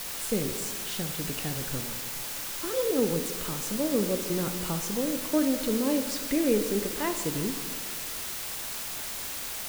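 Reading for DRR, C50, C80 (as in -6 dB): 6.5 dB, 8.0 dB, 9.0 dB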